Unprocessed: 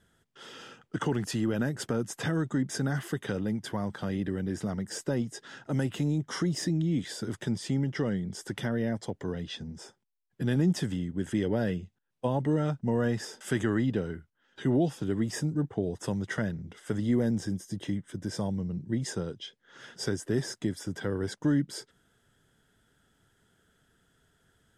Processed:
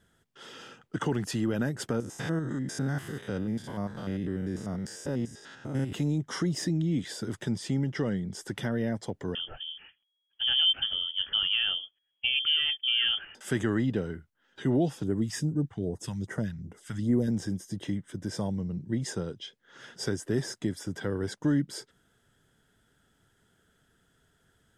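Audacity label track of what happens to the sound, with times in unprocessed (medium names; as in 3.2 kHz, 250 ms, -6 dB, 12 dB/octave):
2.000000	5.930000	spectrogram pixelated in time every 100 ms
9.350000	13.350000	frequency inversion carrier 3.3 kHz
15.030000	17.280000	phase shifter stages 2, 2.5 Hz, lowest notch 390–3800 Hz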